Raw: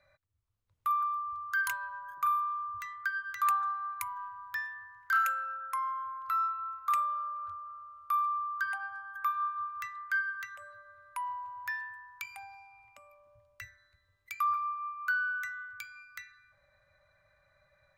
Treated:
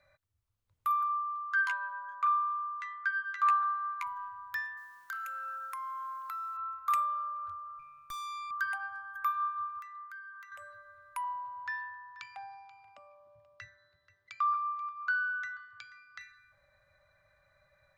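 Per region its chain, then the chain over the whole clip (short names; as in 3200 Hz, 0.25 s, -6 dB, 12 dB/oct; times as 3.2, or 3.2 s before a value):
1.08–4.07 BPF 590–3800 Hz + doubler 12 ms -7.5 dB
4.77–6.57 steep high-pass 170 Hz 72 dB/oct + compressor 12:1, threshold -36 dBFS + requantised 12-bit, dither triangular
7.79–8.51 high shelf 2300 Hz +6 dB + tube stage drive 39 dB, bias 0.8
9.79–10.52 compressor 3:1, threshold -40 dBFS + ladder high-pass 920 Hz, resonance 65%
11.24–16.21 speaker cabinet 110–5100 Hz, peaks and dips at 150 Hz +5 dB, 380 Hz +5 dB, 700 Hz +6 dB, 2300 Hz -8 dB + echo 0.483 s -18 dB
whole clip: dry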